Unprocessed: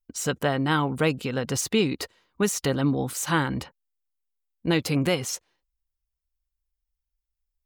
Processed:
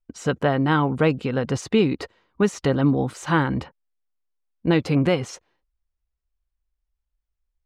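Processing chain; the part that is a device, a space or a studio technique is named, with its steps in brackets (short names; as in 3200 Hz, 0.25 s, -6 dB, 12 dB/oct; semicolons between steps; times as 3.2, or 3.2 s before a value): through cloth (LPF 8400 Hz 12 dB/oct; high shelf 3500 Hz -15 dB); gain +4.5 dB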